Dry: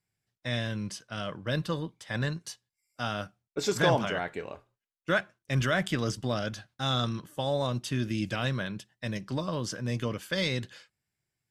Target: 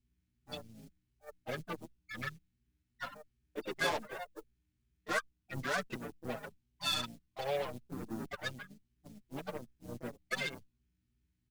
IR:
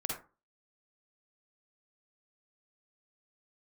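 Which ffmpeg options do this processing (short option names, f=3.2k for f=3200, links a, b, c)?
-filter_complex "[0:a]afftfilt=real='re*gte(hypot(re,im),0.126)':imag='im*gte(hypot(re,im),0.126)':win_size=1024:overlap=0.75,highpass=220,aeval=exprs='val(0)+0.000891*(sin(2*PI*60*n/s)+sin(2*PI*2*60*n/s)/2+sin(2*PI*3*60*n/s)/3+sin(2*PI*4*60*n/s)/4+sin(2*PI*5*60*n/s)/5)':c=same,highshelf=f=9.2k:g=5.5,asplit=2[a][b];[b]alimiter=level_in=0.5dB:limit=-24dB:level=0:latency=1:release=491,volume=-0.5dB,volume=2dB[c];[a][c]amix=inputs=2:normalize=0,aeval=exprs='0.316*(cos(1*acos(clip(val(0)/0.316,-1,1)))-cos(1*PI/2))+0.0282*(cos(4*acos(clip(val(0)/0.316,-1,1)))-cos(4*PI/2))+0.00316*(cos(6*acos(clip(val(0)/0.316,-1,1)))-cos(6*PI/2))+0.0398*(cos(7*acos(clip(val(0)/0.316,-1,1)))-cos(7*PI/2))':c=same,acrusher=bits=6:mode=log:mix=0:aa=0.000001,asoftclip=type=tanh:threshold=-27.5dB,tiltshelf=f=1.2k:g=-6,asplit=4[d][e][f][g];[e]asetrate=33038,aresample=44100,atempo=1.33484,volume=-6dB[h];[f]asetrate=55563,aresample=44100,atempo=0.793701,volume=-9dB[i];[g]asetrate=58866,aresample=44100,atempo=0.749154,volume=-12dB[j];[d][h][i][j]amix=inputs=4:normalize=0,asplit=2[k][l];[l]adelay=5.9,afreqshift=2.7[m];[k][m]amix=inputs=2:normalize=1,volume=2.5dB"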